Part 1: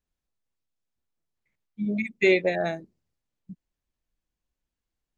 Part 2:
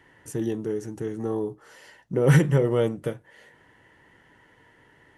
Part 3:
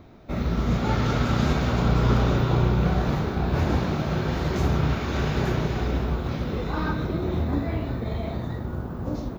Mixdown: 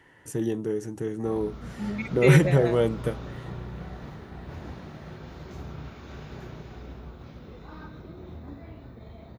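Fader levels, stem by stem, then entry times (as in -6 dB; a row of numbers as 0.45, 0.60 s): -4.5, 0.0, -16.5 dB; 0.00, 0.00, 0.95 s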